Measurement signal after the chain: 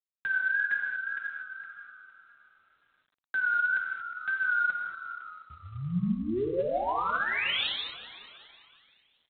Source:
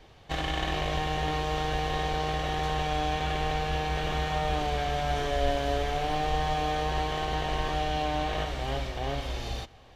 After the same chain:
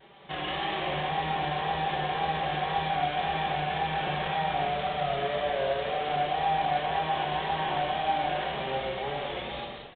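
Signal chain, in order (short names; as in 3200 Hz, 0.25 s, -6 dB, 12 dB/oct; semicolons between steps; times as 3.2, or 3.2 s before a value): HPF 170 Hz 12 dB/oct; comb 5.3 ms, depth 61%; in parallel at -1 dB: compressor 5:1, threshold -37 dBFS; on the sum: overloaded stage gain 22 dB; vibrato 1.9 Hz 79 cents; on a send: frequency-shifting echo 0.358 s, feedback 42%, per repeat -81 Hz, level -15.5 dB; on the sum: non-linear reverb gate 0.26 s flat, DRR -0.5 dB; gain -5.5 dB; G.726 24 kbps 8000 Hz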